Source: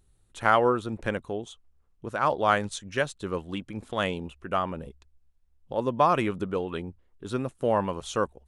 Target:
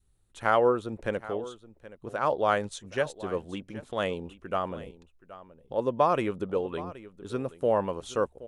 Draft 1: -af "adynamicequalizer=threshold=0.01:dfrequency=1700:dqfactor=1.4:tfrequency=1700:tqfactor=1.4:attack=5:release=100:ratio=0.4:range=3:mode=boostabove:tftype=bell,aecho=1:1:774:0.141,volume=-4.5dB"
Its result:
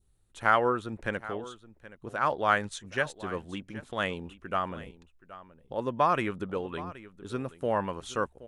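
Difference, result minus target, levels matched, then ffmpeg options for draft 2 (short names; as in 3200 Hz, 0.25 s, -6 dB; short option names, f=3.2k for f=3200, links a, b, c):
2000 Hz band +5.5 dB
-af "adynamicequalizer=threshold=0.01:dfrequency=500:dqfactor=1.4:tfrequency=500:tqfactor=1.4:attack=5:release=100:ratio=0.4:range=3:mode=boostabove:tftype=bell,aecho=1:1:774:0.141,volume=-4.5dB"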